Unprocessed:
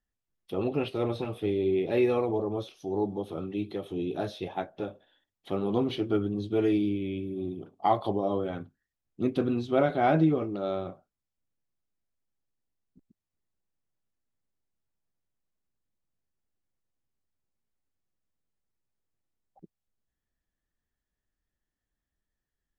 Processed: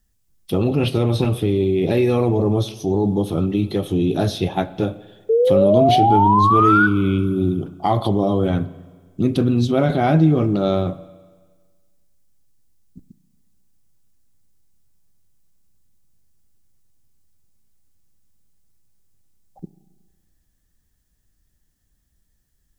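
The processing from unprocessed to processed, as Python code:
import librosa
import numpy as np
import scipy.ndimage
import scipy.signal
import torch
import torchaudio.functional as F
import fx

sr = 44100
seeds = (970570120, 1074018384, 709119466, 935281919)

p1 = fx.bass_treble(x, sr, bass_db=11, treble_db=11)
p2 = fx.over_compress(p1, sr, threshold_db=-27.0, ratio=-0.5)
p3 = p1 + (p2 * 10.0 ** (-2.0 / 20.0))
p4 = fx.spec_paint(p3, sr, seeds[0], shape='rise', start_s=5.29, length_s=1.58, low_hz=440.0, high_hz=1500.0, level_db=-18.0)
p5 = fx.rev_spring(p4, sr, rt60_s=1.5, pass_ms=(33, 46), chirp_ms=40, drr_db=16.0)
y = p5 * 10.0 ** (3.0 / 20.0)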